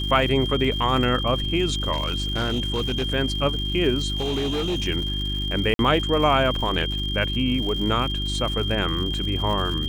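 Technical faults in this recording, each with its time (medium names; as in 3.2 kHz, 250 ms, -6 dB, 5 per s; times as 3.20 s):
crackle 170 per s -31 dBFS
hum 50 Hz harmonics 7 -28 dBFS
whine 3.2 kHz -28 dBFS
1.92–3.04 s: clipped -19.5 dBFS
4.16–4.88 s: clipped -21 dBFS
5.74–5.79 s: dropout 52 ms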